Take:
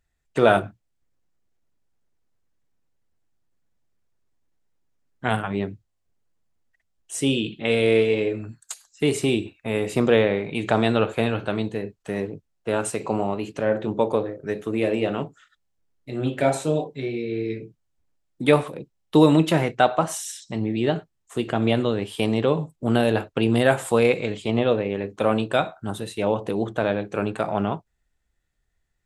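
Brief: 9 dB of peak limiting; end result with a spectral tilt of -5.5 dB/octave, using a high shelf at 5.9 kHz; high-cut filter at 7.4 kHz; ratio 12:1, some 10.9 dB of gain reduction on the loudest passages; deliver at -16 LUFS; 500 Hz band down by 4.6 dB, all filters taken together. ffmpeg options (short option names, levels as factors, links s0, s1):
-af "lowpass=7400,equalizer=f=500:t=o:g=-5.5,highshelf=f=5900:g=-7,acompressor=threshold=0.0631:ratio=12,volume=7.08,alimiter=limit=0.794:level=0:latency=1"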